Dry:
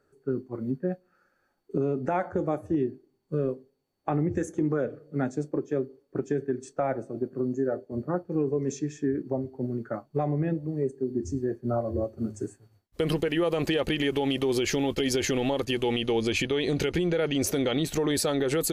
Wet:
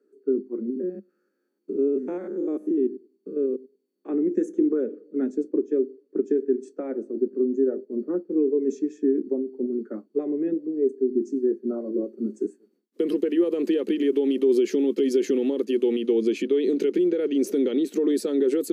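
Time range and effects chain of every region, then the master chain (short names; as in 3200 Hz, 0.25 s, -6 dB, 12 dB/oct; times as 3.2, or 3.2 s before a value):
0.7–4.09 stepped spectrum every 0.1 s + high shelf 5400 Hz +6.5 dB
whole clip: Chebyshev high-pass 200 Hz, order 6; resonant low shelf 540 Hz +10 dB, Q 3; gain -8.5 dB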